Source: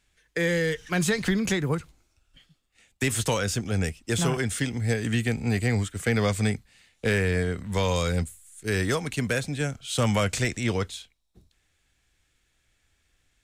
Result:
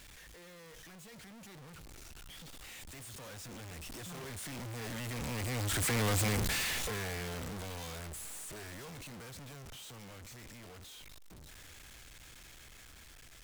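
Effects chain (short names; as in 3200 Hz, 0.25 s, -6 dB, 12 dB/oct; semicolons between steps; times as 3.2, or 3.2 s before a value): infinite clipping; Doppler pass-by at 6.13, 10 m/s, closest 3.8 m; gain -2 dB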